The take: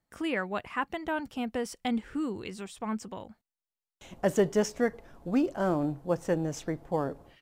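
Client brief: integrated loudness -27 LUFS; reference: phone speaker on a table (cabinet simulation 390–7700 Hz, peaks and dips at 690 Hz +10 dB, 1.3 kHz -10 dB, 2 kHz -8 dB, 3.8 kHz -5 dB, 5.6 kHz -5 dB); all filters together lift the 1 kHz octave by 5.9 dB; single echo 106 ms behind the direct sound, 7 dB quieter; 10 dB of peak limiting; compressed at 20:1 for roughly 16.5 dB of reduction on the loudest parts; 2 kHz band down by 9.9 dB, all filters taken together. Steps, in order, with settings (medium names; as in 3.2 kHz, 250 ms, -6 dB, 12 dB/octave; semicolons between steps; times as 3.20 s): peaking EQ 1 kHz +5 dB; peaking EQ 2 kHz -8.5 dB; compression 20:1, threshold -36 dBFS; peak limiter -34.5 dBFS; cabinet simulation 390–7700 Hz, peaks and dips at 690 Hz +10 dB, 1.3 kHz -10 dB, 2 kHz -8 dB, 3.8 kHz -5 dB, 5.6 kHz -5 dB; delay 106 ms -7 dB; trim +18 dB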